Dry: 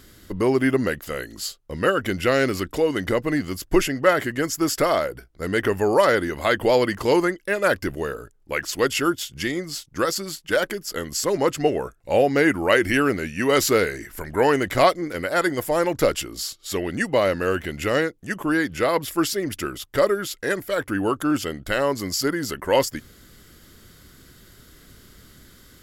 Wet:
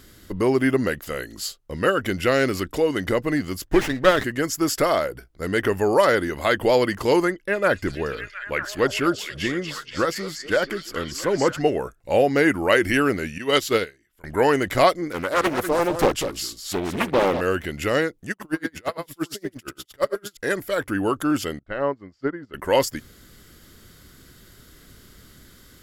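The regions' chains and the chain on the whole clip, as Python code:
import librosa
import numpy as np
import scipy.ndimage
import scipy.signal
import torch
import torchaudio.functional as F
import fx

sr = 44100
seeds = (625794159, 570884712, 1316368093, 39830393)

y = fx.chain(x, sr, fx.peak_eq(hz=1800.0, db=8.5, octaves=0.24),
    fx.running_max(window=9), at=(3.67, 4.24))
y = fx.chain(y, sr, fx.bass_treble(bass_db=2, treble_db=-8),
    fx.echo_stepped(ms=237, hz=5700.0, octaves=-0.7, feedback_pct=70, wet_db=-1.5), at=(7.32, 11.61))
y = fx.chain(y, sr, fx.peak_eq(hz=3300.0, db=9.5, octaves=0.58),
    fx.upward_expand(threshold_db=-34.0, expansion=2.5), at=(13.38, 14.24))
y = fx.chain(y, sr, fx.echo_single(ms=195, db=-9.0),
    fx.doppler_dist(depth_ms=0.75), at=(15.13, 17.41))
y = fx.chain(y, sr, fx.law_mismatch(coded='A'),
    fx.echo_single(ms=86, db=-4.5),
    fx.tremolo_db(hz=8.7, depth_db=36), at=(18.31, 20.37))
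y = fx.chain(y, sr, fx.lowpass(hz=1800.0, slope=12),
    fx.upward_expand(threshold_db=-35.0, expansion=2.5), at=(21.59, 22.54))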